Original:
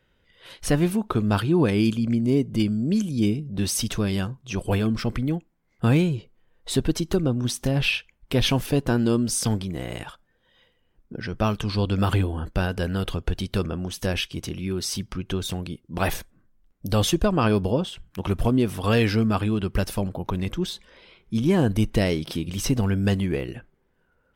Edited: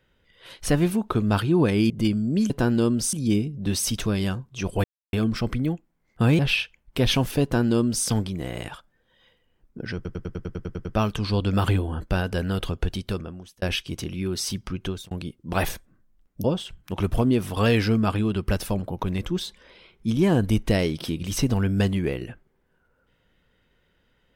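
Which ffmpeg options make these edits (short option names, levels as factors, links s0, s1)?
-filter_complex "[0:a]asplit=18[s0][s1][s2][s3][s4][s5][s6][s7][s8][s9][s10][s11][s12][s13][s14][s15][s16][s17];[s0]atrim=end=1.902[s18];[s1]atrim=start=2.448:end=3.052[s19];[s2]atrim=start=8.778:end=9.412[s20];[s3]atrim=start=3.048:end=4.76,asetpts=PTS-STARTPTS,afade=t=out:st=1.708:d=0.004:c=hsin,apad=pad_dur=0.29[s21];[s4]atrim=start=4.76:end=6.022,asetpts=PTS-STARTPTS,afade=t=in:d=0.004:c=hsin[s22];[s5]atrim=start=7.738:end=11.402[s23];[s6]atrim=start=11.298:end=11.402[s24];[s7]atrim=start=11.298:end=11.402[s25];[s8]atrim=start=11.298:end=11.402[s26];[s9]atrim=start=11.298:end=11.402[s27];[s10]atrim=start=11.298:end=11.402[s28];[s11]atrim=start=11.298:end=11.402[s29];[s12]atrim=start=11.298:end=11.402[s30];[s13]atrim=start=11.298:end=11.402[s31];[s14]atrim=start=11.298:end=14.07,asetpts=PTS-STARTPTS,afade=t=out:st=2.012:d=0.76[s32];[s15]atrim=start=14.07:end=15.56,asetpts=PTS-STARTPTS,afade=t=in:d=0.004:c=hsin,afade=t=out:st=1.21:d=0.28[s33];[s16]atrim=start=15.56:end=16.892,asetpts=PTS-STARTPTS,afade=t=in:d=0.004:c=hsin[s34];[s17]atrim=start=17.708[s35];[s18][s19]acrossfade=d=0.004:c1=hsin:c2=hsin[s36];[s36][s20]acrossfade=d=0.004:c1=hsin:c2=hsin[s37];[s21][s22]concat=n=2:v=0:a=1[s38];[s37][s38]acrossfade=d=0.004:c1=hsin:c2=hsin[s39];[s39][s23]acrossfade=d=0.004:c1=hsin:c2=hsin[s40];[s40][s24]acrossfade=d=0.004:c1=hsin:c2=hsin[s41];[s41][s25]acrossfade=d=0.004:c1=hsin:c2=hsin[s42];[s42][s26]acrossfade=d=0.004:c1=hsin:c2=hsin[s43];[s43][s27]acrossfade=d=0.004:c1=hsin:c2=hsin[s44];[s44][s28]acrossfade=d=0.004:c1=hsin:c2=hsin[s45];[s45][s29]acrossfade=d=0.004:c1=hsin:c2=hsin[s46];[s46][s30]acrossfade=d=0.004:c1=hsin:c2=hsin[s47];[s47][s31]acrossfade=d=0.004:c1=hsin:c2=hsin[s48];[s32][s33][s34]concat=n=3:v=0:a=1[s49];[s48][s49]acrossfade=d=0.004:c1=hsin:c2=hsin[s50];[s50][s35]acrossfade=d=0.004:c1=hsin:c2=hsin"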